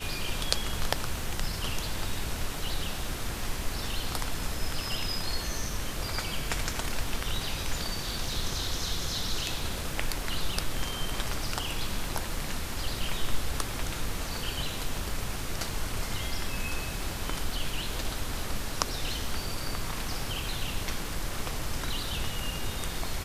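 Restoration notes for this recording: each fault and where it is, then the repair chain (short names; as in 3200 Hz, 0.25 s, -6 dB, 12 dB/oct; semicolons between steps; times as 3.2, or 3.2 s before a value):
crackle 23/s -38 dBFS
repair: de-click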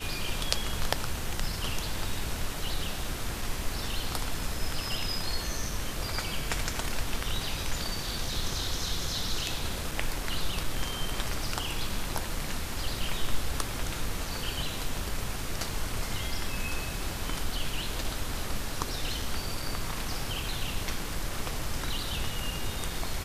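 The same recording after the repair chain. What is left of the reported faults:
none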